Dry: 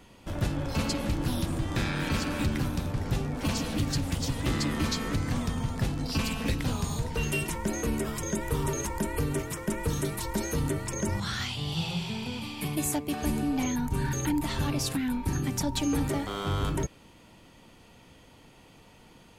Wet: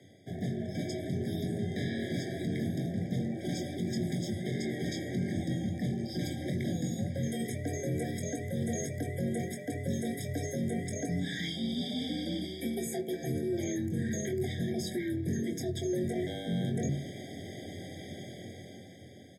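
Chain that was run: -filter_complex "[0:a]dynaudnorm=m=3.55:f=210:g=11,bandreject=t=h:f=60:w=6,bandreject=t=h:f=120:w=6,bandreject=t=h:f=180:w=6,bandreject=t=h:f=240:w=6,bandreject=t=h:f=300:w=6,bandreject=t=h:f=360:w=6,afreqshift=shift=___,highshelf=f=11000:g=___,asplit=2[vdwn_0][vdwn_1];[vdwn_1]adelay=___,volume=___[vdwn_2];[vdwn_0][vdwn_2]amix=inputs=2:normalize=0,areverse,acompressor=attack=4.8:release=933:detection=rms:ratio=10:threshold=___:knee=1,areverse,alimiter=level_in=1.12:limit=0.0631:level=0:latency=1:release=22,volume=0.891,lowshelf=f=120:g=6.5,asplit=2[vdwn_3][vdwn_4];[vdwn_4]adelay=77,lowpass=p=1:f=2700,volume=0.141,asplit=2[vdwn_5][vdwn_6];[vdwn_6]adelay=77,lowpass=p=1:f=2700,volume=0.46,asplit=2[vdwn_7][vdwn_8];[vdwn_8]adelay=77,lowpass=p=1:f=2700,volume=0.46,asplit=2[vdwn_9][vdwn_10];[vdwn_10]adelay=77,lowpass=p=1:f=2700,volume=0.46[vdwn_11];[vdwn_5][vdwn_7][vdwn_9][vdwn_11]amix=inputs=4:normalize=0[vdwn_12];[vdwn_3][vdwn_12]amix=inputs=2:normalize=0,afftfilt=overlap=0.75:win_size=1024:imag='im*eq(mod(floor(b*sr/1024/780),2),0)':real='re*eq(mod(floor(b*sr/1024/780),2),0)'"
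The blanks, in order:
81, -5, 22, 0.447, 0.0398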